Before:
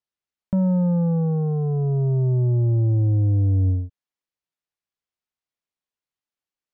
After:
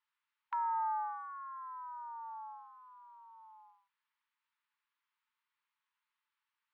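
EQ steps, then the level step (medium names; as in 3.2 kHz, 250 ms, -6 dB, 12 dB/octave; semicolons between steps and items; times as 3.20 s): brick-wall FIR high-pass 840 Hz; distance through air 380 m; +12.0 dB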